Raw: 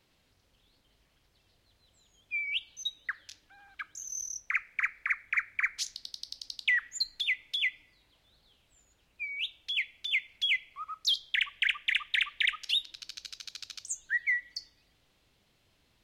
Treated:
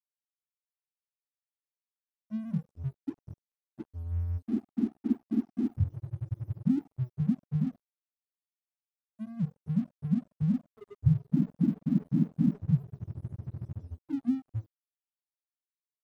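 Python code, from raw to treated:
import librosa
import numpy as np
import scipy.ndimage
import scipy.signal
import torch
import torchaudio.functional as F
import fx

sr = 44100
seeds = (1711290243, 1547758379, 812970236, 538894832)

y = fx.octave_mirror(x, sr, pivot_hz=720.0)
y = fx.band_shelf(y, sr, hz=990.0, db=-11.0, octaves=2.3)
y = np.sign(y) * np.maximum(np.abs(y) - 10.0 ** (-48.0 / 20.0), 0.0)
y = y * 10.0 ** (-1.5 / 20.0)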